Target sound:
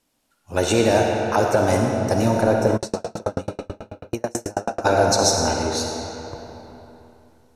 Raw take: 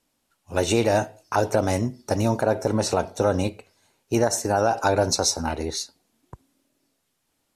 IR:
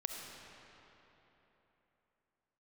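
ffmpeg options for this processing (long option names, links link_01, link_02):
-filter_complex "[1:a]atrim=start_sample=2205,asetrate=48510,aresample=44100[link_01];[0:a][link_01]afir=irnorm=-1:irlink=0,asplit=3[link_02][link_03][link_04];[link_02]afade=type=out:start_time=2.76:duration=0.02[link_05];[link_03]aeval=exprs='val(0)*pow(10,-40*if(lt(mod(9.2*n/s,1),2*abs(9.2)/1000),1-mod(9.2*n/s,1)/(2*abs(9.2)/1000),(mod(9.2*n/s,1)-2*abs(9.2)/1000)/(1-2*abs(9.2)/1000))/20)':channel_layout=same,afade=type=in:start_time=2.76:duration=0.02,afade=type=out:start_time=4.84:duration=0.02[link_06];[link_04]afade=type=in:start_time=4.84:duration=0.02[link_07];[link_05][link_06][link_07]amix=inputs=3:normalize=0,volume=4.5dB"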